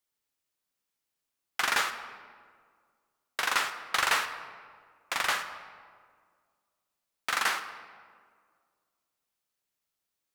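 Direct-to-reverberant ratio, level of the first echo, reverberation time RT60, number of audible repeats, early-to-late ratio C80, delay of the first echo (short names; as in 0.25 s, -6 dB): 8.5 dB, none, 1.9 s, none, 11.0 dB, none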